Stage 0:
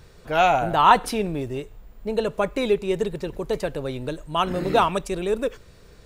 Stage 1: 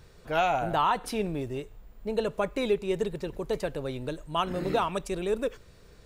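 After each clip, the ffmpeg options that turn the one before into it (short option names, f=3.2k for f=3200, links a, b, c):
-af "alimiter=limit=-11dB:level=0:latency=1:release=284,volume=-4.5dB"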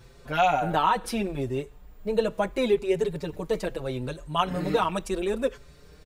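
-filter_complex "[0:a]asplit=2[a][b];[b]adelay=5.5,afreqshift=0.75[c];[a][c]amix=inputs=2:normalize=1,volume=5.5dB"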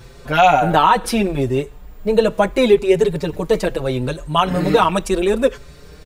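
-af "alimiter=level_in=11.5dB:limit=-1dB:release=50:level=0:latency=1,volume=-1dB"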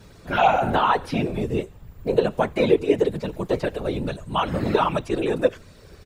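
-filter_complex "[0:a]afftfilt=real='hypot(re,im)*cos(2*PI*random(0))':imag='hypot(re,im)*sin(2*PI*random(1))':win_size=512:overlap=0.75,acrossover=split=4500[a][b];[b]acompressor=threshold=-51dB:ratio=4:attack=1:release=60[c];[a][c]amix=inputs=2:normalize=0"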